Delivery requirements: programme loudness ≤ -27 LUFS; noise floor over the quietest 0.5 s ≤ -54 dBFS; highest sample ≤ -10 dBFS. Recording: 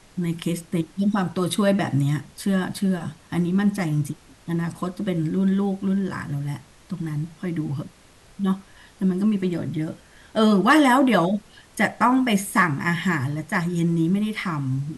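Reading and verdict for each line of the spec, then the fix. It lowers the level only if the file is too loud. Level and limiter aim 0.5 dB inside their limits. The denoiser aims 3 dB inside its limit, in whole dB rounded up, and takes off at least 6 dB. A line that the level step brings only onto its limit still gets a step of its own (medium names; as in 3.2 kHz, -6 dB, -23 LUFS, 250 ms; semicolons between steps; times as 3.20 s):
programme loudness -23.0 LUFS: fail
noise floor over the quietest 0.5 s -51 dBFS: fail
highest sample -5.5 dBFS: fail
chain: trim -4.5 dB; peak limiter -10.5 dBFS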